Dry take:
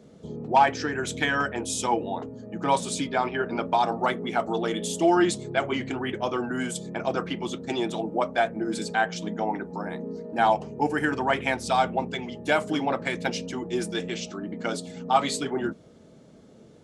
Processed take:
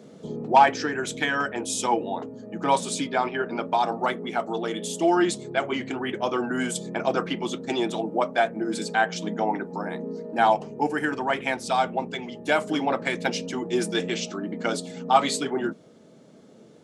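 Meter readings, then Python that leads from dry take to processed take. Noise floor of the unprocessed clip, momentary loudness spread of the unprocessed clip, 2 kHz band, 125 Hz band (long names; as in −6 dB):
−52 dBFS, 10 LU, +1.0 dB, −1.5 dB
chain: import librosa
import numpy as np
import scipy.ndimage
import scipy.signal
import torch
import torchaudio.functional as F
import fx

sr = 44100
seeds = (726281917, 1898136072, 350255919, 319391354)

y = scipy.signal.sosfilt(scipy.signal.butter(2, 160.0, 'highpass', fs=sr, output='sos'), x)
y = fx.rider(y, sr, range_db=10, speed_s=2.0)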